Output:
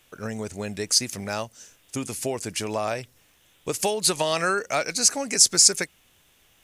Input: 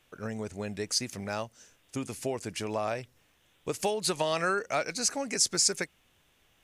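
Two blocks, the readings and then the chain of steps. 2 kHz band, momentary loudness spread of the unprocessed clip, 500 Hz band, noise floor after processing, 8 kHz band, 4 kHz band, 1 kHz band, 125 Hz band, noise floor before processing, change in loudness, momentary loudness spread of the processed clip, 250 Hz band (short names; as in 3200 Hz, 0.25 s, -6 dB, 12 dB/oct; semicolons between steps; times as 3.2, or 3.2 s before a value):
+5.0 dB, 12 LU, +4.0 dB, -61 dBFS, +10.0 dB, +8.0 dB, +4.5 dB, +4.0 dB, -68 dBFS, +8.0 dB, 16 LU, +4.0 dB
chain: high shelf 4600 Hz +8 dB; gain +4 dB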